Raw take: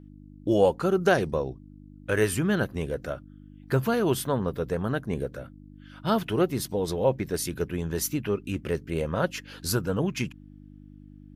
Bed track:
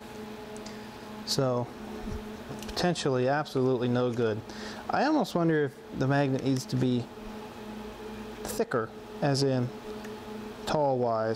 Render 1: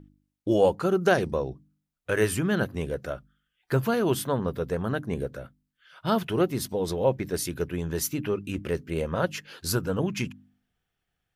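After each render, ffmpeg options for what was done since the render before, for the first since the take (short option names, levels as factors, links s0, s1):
-af "bandreject=f=50:t=h:w=4,bandreject=f=100:t=h:w=4,bandreject=f=150:t=h:w=4,bandreject=f=200:t=h:w=4,bandreject=f=250:t=h:w=4,bandreject=f=300:t=h:w=4"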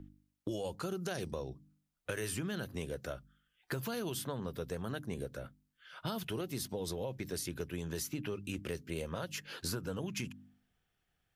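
-filter_complex "[0:a]alimiter=limit=0.133:level=0:latency=1:release=51,acrossover=split=130|3100|7300[s0][s1][s2][s3];[s0]acompressor=threshold=0.00398:ratio=4[s4];[s1]acompressor=threshold=0.0112:ratio=4[s5];[s2]acompressor=threshold=0.00562:ratio=4[s6];[s3]acompressor=threshold=0.00562:ratio=4[s7];[s4][s5][s6][s7]amix=inputs=4:normalize=0"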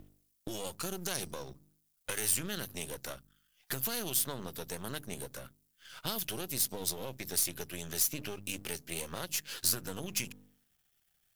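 -af "aeval=exprs='if(lt(val(0),0),0.251*val(0),val(0))':c=same,crystalizer=i=4.5:c=0"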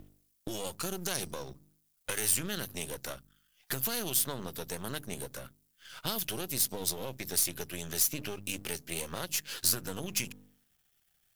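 -af "volume=1.26"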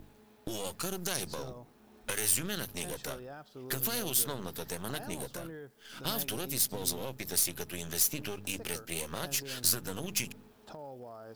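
-filter_complex "[1:a]volume=0.106[s0];[0:a][s0]amix=inputs=2:normalize=0"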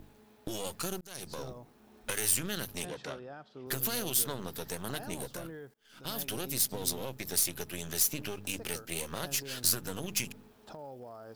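-filter_complex "[0:a]asettb=1/sr,asplit=3[s0][s1][s2];[s0]atrim=end=2.854[s3];[s1]atrim=start=2.85:end=3.67,asetpts=PTS-STARTPTS,afade=t=in:d=0.004:c=qsin,afade=t=out:st=0.816:d=0.004:c=qsin,highpass=110,lowpass=4300[s4];[s2]atrim=start=3.666[s5];[s3][s4]acrossfade=d=0.004:c1=hsin:c2=qsin[s6];[s6][s5]acrossfade=d=0.004:c1=qsin:c2=hsin,asplit=3[s7][s8][s9];[s7]atrim=end=1.01,asetpts=PTS-STARTPTS,afade=t=out:st=1.006:d=0.004:c=hsin[s10];[s8]atrim=start=1.01:end=5.74,asetpts=PTS-STARTPTS,afade=t=in:d=0.43,afade=t=out:st=4.726:d=0.004:c=hsin:silence=0.0707946[s11];[s9]atrim=start=5.74,asetpts=PTS-STARTPTS,afade=t=in:d=0.63:silence=0.0707946[s12];[s10][s11][s12]concat=n=3:v=0:a=1"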